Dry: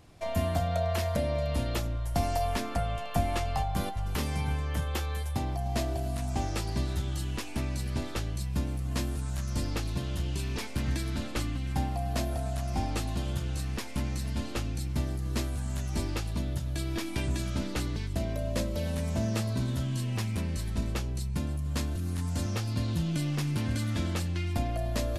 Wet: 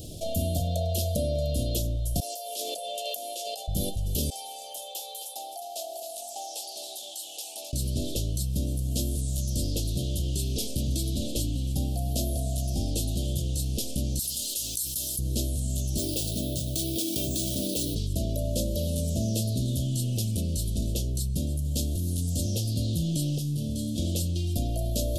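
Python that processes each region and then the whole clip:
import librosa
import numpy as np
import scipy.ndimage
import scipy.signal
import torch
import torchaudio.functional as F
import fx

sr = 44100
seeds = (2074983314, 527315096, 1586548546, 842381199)

y = fx.chain(x, sr, fx.highpass(hz=490.0, slope=24),
    fx.over_compress(threshold_db=-41.0, ratio=-1.0), at=(2.2, 3.68))
y = fx.chain(y, sr, fx.ladder_highpass(hz=780.0, resonance_pct=80),
    fx.echo_single(ms=261, db=-11.5), at=(4.3, 7.73))
y = fx.chain(y, sr, fx.pre_emphasis(coefficient=0.97),
    fx.quant_dither(seeds[0], bits=12, dither='none'),
    fx.env_flatten(amount_pct=70), at=(14.19, 15.19))
y = fx.chain(y, sr, fx.highpass(hz=260.0, slope=6),
    fx.resample_bad(factor=3, down='none', up='hold'),
    fx.env_flatten(amount_pct=50), at=(15.98, 17.95))
y = fx.chain(y, sr, fx.notch(hz=2300.0, q=15.0),
    fx.comb_fb(f0_hz=73.0, decay_s=0.65, harmonics='all', damping=0.0, mix_pct=80), at=(23.38, 23.98))
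y = scipy.signal.sosfilt(scipy.signal.ellip(3, 1.0, 40, [610.0, 3200.0], 'bandstop', fs=sr, output='sos'), y)
y = fx.high_shelf(y, sr, hz=6500.0, db=11.5)
y = fx.env_flatten(y, sr, amount_pct=50)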